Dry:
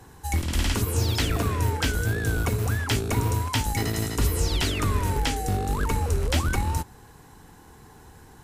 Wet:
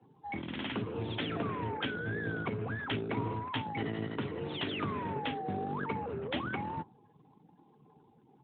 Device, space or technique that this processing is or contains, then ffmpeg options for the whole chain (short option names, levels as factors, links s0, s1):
mobile call with aggressive noise cancelling: -filter_complex "[0:a]asplit=3[s0][s1][s2];[s0]afade=t=out:st=1.55:d=0.02[s3];[s1]lowpass=f=5600:w=0.5412,lowpass=f=5600:w=1.3066,afade=t=in:st=1.55:d=0.02,afade=t=out:st=2.74:d=0.02[s4];[s2]afade=t=in:st=2.74:d=0.02[s5];[s3][s4][s5]amix=inputs=3:normalize=0,highpass=f=130:w=0.5412,highpass=f=130:w=1.3066,afftdn=nr=36:nf=-45,volume=0.531" -ar 8000 -c:a libopencore_amrnb -b:a 12200